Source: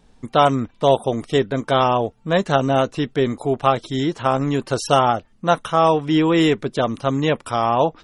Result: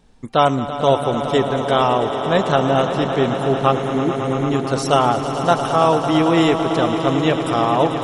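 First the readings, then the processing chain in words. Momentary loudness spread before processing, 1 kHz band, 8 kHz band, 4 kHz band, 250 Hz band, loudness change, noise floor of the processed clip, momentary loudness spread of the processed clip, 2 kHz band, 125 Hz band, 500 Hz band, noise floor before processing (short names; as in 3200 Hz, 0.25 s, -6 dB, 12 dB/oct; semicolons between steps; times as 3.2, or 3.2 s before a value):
5 LU, +1.5 dB, +1.5 dB, +1.5 dB, +2.0 dB, +1.5 dB, -26 dBFS, 4 LU, +1.5 dB, +1.5 dB, +1.5 dB, -54 dBFS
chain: spectral repair 3.74–4.43, 580–8100 Hz after; swelling echo 0.111 s, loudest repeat 5, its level -12.5 dB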